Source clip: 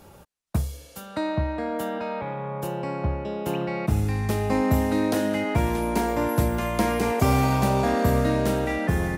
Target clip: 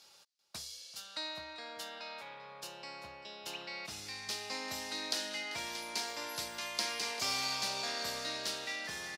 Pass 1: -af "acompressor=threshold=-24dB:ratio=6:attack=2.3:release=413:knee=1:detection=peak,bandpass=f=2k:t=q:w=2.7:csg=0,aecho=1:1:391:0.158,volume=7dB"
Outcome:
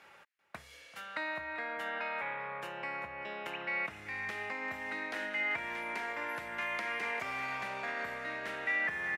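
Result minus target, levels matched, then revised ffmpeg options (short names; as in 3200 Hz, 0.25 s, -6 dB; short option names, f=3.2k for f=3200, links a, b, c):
4000 Hz band -13.5 dB; compressor: peak gain reduction +11.5 dB
-af "bandpass=f=4.7k:t=q:w=2.7:csg=0,aecho=1:1:391:0.158,volume=7dB"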